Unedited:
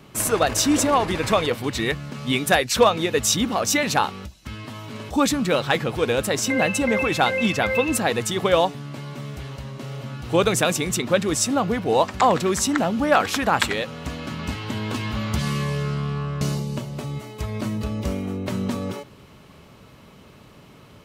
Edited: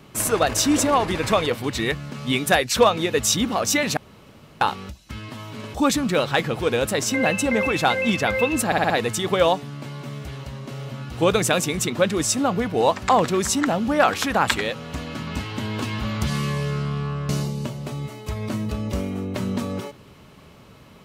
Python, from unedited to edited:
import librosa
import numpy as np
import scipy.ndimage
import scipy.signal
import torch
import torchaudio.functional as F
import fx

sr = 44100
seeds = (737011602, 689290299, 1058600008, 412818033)

y = fx.edit(x, sr, fx.insert_room_tone(at_s=3.97, length_s=0.64),
    fx.stutter(start_s=8.02, slice_s=0.06, count=5), tone=tone)